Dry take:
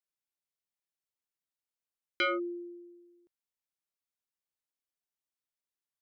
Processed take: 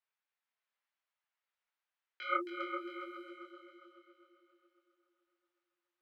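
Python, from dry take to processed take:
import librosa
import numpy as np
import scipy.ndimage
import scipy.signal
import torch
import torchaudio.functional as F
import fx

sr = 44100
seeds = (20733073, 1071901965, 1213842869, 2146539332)

y = scipy.signal.sosfilt(scipy.signal.butter(2, 930.0, 'highpass', fs=sr, output='sos'), x)
y = fx.over_compress(y, sr, threshold_db=-37.0, ratio=-0.5)
y = fx.echo_heads(y, sr, ms=135, heads='second and third', feedback_pct=51, wet_db=-8.0)
y = fx.env_lowpass(y, sr, base_hz=2300.0, full_db=-46.5)
y = fx.echo_feedback(y, sr, ms=312, feedback_pct=51, wet_db=-15.0)
y = fx.detune_double(y, sr, cents=44)
y = y * librosa.db_to_amplitude(7.0)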